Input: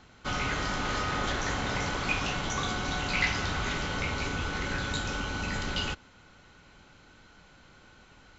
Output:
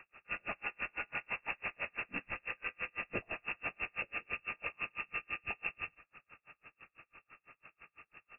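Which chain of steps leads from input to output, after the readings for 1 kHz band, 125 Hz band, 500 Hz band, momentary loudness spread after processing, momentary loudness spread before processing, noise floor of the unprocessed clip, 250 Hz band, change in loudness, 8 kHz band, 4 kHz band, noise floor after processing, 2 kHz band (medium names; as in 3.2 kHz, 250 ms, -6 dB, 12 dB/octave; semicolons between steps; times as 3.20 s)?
-13.5 dB, -23.0 dB, -12.5 dB, 20 LU, 5 LU, -57 dBFS, -18.0 dB, -9.0 dB, no reading, -18.5 dB, under -85 dBFS, -7.0 dB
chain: dynamic bell 1.3 kHz, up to -5 dB, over -44 dBFS, Q 2.4; compression 2.5:1, threshold -36 dBFS, peak gain reduction 9 dB; frequency inversion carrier 2.7 kHz; logarithmic tremolo 6 Hz, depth 39 dB; trim +2.5 dB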